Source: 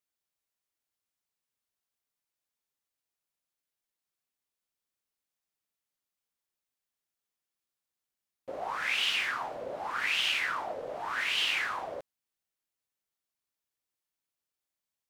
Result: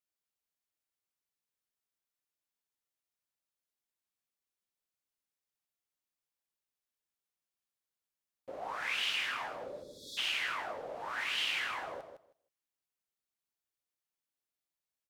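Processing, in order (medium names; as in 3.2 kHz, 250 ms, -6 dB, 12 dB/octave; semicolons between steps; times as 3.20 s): spectral selection erased 9.66–10.18 s, 620–3300 Hz; on a send: feedback delay 159 ms, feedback 16%, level -8 dB; on the sum: trim -5 dB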